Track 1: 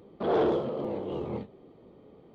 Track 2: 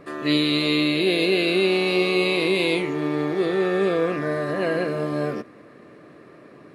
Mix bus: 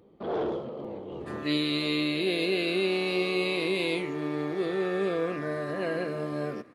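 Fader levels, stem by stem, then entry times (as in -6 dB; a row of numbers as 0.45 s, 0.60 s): -5.0 dB, -7.0 dB; 0.00 s, 1.20 s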